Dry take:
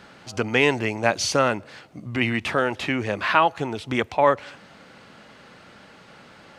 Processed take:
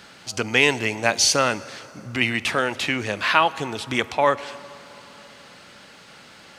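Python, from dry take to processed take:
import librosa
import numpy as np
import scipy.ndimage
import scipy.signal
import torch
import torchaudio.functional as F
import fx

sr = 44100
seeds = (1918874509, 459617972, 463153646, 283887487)

y = fx.high_shelf(x, sr, hz=2600.0, db=12.0)
y = fx.rev_plate(y, sr, seeds[0], rt60_s=3.6, hf_ratio=0.6, predelay_ms=0, drr_db=17.0)
y = y * librosa.db_to_amplitude(-2.0)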